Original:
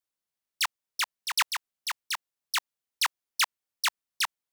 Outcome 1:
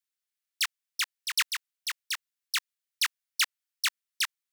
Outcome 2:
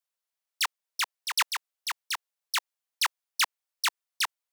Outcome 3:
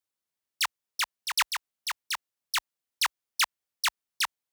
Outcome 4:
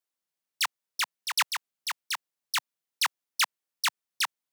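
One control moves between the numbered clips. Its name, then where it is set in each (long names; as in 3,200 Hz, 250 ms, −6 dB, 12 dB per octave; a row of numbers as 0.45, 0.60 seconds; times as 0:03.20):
high-pass filter, corner frequency: 1,400, 480, 44, 130 Hertz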